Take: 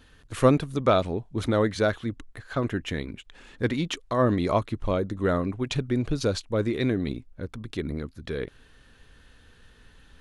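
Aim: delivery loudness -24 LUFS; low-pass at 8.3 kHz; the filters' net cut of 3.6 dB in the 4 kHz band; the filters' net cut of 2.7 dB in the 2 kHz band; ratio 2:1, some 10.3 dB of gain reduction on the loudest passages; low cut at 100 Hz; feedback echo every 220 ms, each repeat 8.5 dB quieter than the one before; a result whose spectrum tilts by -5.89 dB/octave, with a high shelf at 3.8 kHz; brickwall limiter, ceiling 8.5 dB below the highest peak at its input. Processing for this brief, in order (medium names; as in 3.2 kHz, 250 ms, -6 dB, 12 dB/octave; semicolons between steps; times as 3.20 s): high-pass 100 Hz; low-pass 8.3 kHz; peaking EQ 2 kHz -3.5 dB; treble shelf 3.8 kHz +4 dB; peaking EQ 4 kHz -5.5 dB; compression 2:1, threshold -32 dBFS; peak limiter -23.5 dBFS; feedback delay 220 ms, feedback 38%, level -8.5 dB; trim +12 dB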